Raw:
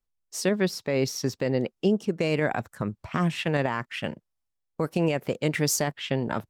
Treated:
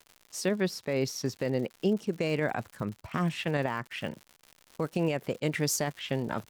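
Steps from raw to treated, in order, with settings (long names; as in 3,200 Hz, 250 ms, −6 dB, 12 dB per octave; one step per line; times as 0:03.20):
surface crackle 150 per second −35 dBFS
level −4 dB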